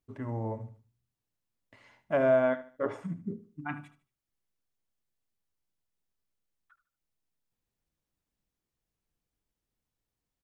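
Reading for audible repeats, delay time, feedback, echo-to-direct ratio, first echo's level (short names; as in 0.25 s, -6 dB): 3, 75 ms, 32%, -14.5 dB, -15.0 dB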